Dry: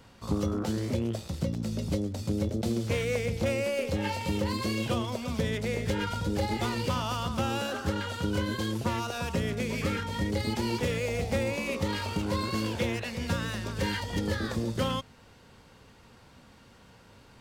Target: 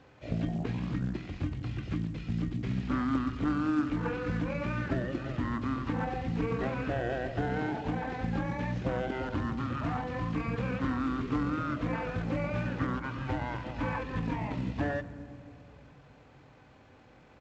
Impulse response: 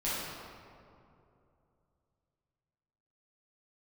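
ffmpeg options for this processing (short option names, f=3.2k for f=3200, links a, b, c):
-filter_complex "[0:a]asetrate=24046,aresample=44100,atempo=1.83401,highpass=f=170:p=1,aemphasis=mode=reproduction:type=50fm,acrossover=split=2600[a][b];[b]acompressor=threshold=-55dB:ratio=4:attack=1:release=60[c];[a][c]amix=inputs=2:normalize=0,asplit=2[d][e];[1:a]atrim=start_sample=2205,lowshelf=f=380:g=8.5[f];[e][f]afir=irnorm=-1:irlink=0,volume=-21.5dB[g];[d][g]amix=inputs=2:normalize=0" -ar 16000 -c:a pcm_mulaw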